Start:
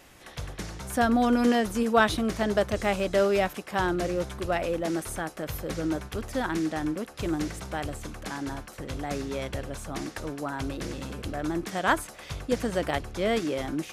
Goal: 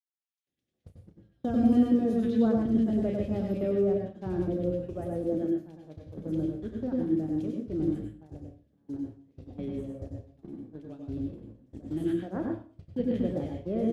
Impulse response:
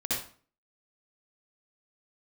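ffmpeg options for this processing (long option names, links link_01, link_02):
-filter_complex "[0:a]firequalizer=gain_entry='entry(160,0);entry(400,-4);entry(940,-21);entry(1800,-19);entry(3200,-15);entry(8100,-23)':delay=0.05:min_phase=1,acrossover=split=1700|5400[link_01][link_02][link_03];[link_02]adelay=210[link_04];[link_01]adelay=470[link_05];[link_05][link_04][link_03]amix=inputs=3:normalize=0,adynamicequalizer=threshold=0.00158:dfrequency=3000:dqfactor=0.86:tfrequency=3000:tqfactor=0.86:attack=5:release=100:ratio=0.375:range=2:mode=cutabove:tftype=bell,highpass=92,agate=range=-30dB:threshold=-35dB:ratio=16:detection=peak,asplit=2[link_06][link_07];[1:a]atrim=start_sample=2205,adelay=32[link_08];[link_07][link_08]afir=irnorm=-1:irlink=0,volume=-7.5dB[link_09];[link_06][link_09]amix=inputs=2:normalize=0"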